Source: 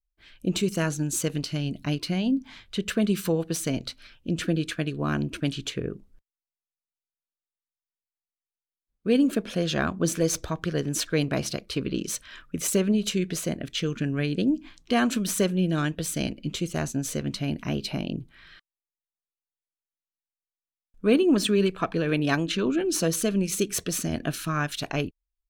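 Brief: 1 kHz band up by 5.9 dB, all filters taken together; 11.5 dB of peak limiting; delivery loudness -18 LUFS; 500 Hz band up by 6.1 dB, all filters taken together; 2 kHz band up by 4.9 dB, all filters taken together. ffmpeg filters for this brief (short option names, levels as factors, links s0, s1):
-af "equalizer=f=500:t=o:g=6.5,equalizer=f=1000:t=o:g=4.5,equalizer=f=2000:t=o:g=4.5,volume=2.99,alimiter=limit=0.447:level=0:latency=1"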